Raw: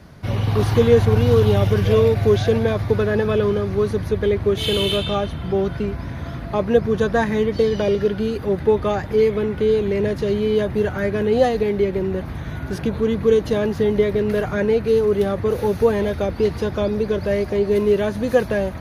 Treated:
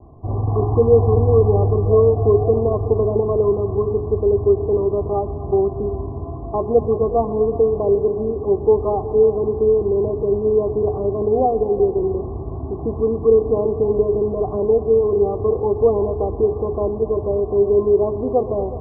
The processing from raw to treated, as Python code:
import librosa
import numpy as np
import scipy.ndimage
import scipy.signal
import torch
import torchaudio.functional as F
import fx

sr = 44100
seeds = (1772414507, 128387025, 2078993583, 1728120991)

y = scipy.signal.sosfilt(scipy.signal.butter(16, 1100.0, 'lowpass', fs=sr, output='sos'), x)
y = fx.hum_notches(y, sr, base_hz=60, count=7)
y = y + 0.64 * np.pad(y, (int(2.7 * sr / 1000.0), 0))[:len(y)]
y = fx.echo_heads(y, sr, ms=123, heads='all three', feedback_pct=44, wet_db=-18)